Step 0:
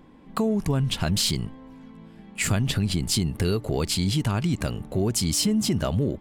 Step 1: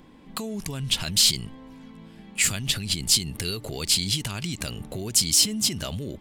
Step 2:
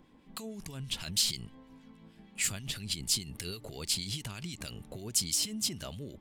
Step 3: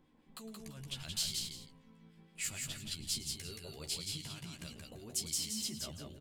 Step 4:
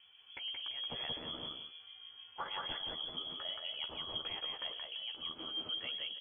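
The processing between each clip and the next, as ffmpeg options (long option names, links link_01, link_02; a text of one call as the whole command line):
ffmpeg -i in.wav -filter_complex "[0:a]acrossover=split=2400[link_01][link_02];[link_01]alimiter=level_in=1dB:limit=-24dB:level=0:latency=1:release=94,volume=-1dB[link_03];[link_02]acontrast=70[link_04];[link_03][link_04]amix=inputs=2:normalize=0" out.wav
ffmpeg -i in.wav -filter_complex "[0:a]acrossover=split=1600[link_01][link_02];[link_01]aeval=exprs='val(0)*(1-0.5/2+0.5/2*cos(2*PI*6.3*n/s))':channel_layout=same[link_03];[link_02]aeval=exprs='val(0)*(1-0.5/2-0.5/2*cos(2*PI*6.3*n/s))':channel_layout=same[link_04];[link_03][link_04]amix=inputs=2:normalize=0,volume=-7.5dB" out.wav
ffmpeg -i in.wav -filter_complex "[0:a]asplit=2[link_01][link_02];[link_02]adelay=13,volume=-5dB[link_03];[link_01][link_03]amix=inputs=2:normalize=0,aecho=1:1:108|175|339:0.158|0.668|0.168,volume=-9dB" out.wav
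ffmpeg -i in.wav -af "alimiter=level_in=6.5dB:limit=-24dB:level=0:latency=1:release=53,volume=-6.5dB,lowpass=frequency=2900:width_type=q:width=0.5098,lowpass=frequency=2900:width_type=q:width=0.6013,lowpass=frequency=2900:width_type=q:width=0.9,lowpass=frequency=2900:width_type=q:width=2.563,afreqshift=-3400,volume=6.5dB" out.wav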